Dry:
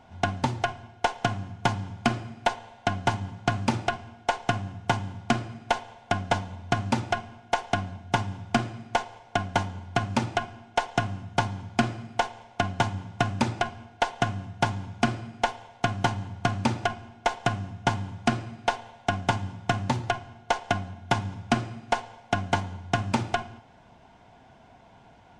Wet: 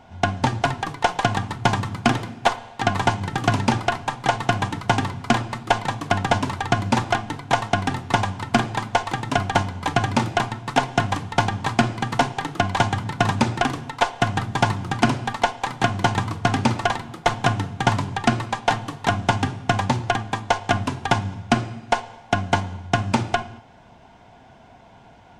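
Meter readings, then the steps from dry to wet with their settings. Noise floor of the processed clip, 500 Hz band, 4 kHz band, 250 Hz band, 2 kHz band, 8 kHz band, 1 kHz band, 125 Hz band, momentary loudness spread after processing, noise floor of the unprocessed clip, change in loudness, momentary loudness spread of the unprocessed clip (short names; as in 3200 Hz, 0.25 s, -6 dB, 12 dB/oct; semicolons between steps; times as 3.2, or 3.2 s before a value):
-49 dBFS, +5.5 dB, +6.0 dB, +6.0 dB, +6.0 dB, +6.5 dB, +6.5 dB, +6.0 dB, 3 LU, -54 dBFS, +6.0 dB, 4 LU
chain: echoes that change speed 0.259 s, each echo +2 st, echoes 3, each echo -6 dB; gain +5 dB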